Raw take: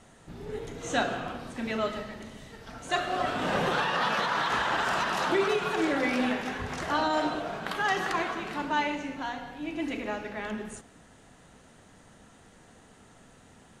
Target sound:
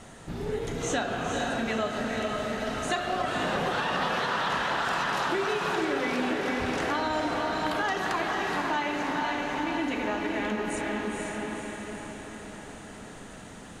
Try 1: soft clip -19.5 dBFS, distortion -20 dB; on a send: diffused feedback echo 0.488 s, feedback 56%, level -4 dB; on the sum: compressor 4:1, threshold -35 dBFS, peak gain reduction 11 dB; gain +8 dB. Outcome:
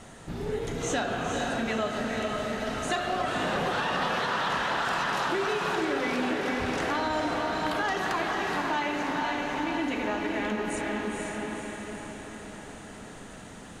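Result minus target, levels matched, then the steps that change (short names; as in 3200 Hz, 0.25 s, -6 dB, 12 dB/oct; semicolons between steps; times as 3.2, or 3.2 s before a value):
soft clip: distortion +21 dB
change: soft clip -7.5 dBFS, distortion -41 dB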